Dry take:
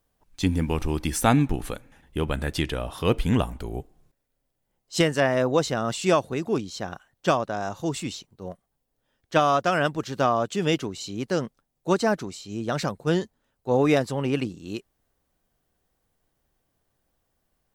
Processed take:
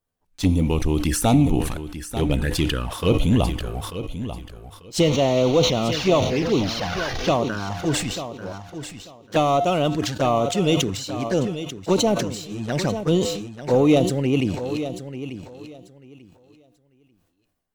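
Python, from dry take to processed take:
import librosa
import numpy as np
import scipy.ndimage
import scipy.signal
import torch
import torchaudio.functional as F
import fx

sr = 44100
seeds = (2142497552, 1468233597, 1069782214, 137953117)

y = fx.delta_mod(x, sr, bps=32000, step_db=-25.0, at=(5.0, 7.34))
y = fx.leveller(y, sr, passes=2)
y = fx.env_flanger(y, sr, rest_ms=11.8, full_db=-14.5)
y = fx.comb_fb(y, sr, f0_hz=100.0, decay_s=0.59, harmonics='odd', damping=0.0, mix_pct=50)
y = fx.echo_feedback(y, sr, ms=891, feedback_pct=20, wet_db=-11.5)
y = fx.sustainer(y, sr, db_per_s=57.0)
y = y * 10.0 ** (3.5 / 20.0)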